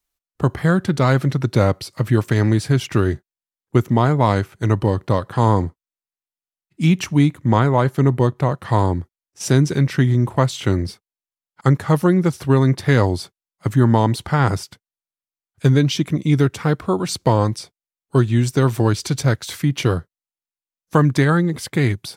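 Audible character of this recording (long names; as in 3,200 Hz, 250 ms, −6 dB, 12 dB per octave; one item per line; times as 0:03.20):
background noise floor −95 dBFS
spectral slope −7.0 dB per octave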